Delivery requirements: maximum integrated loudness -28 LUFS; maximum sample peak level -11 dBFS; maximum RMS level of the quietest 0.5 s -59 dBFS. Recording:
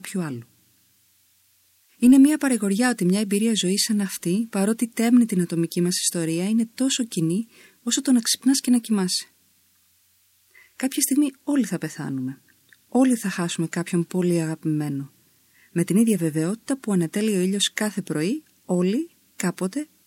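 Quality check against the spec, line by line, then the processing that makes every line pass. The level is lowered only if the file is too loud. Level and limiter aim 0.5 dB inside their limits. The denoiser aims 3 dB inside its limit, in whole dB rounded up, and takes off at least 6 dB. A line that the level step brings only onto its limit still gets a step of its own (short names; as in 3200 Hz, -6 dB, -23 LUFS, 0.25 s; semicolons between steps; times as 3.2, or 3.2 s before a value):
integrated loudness -22.5 LUFS: fail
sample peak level -7.0 dBFS: fail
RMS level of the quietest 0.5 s -62 dBFS: OK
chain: gain -6 dB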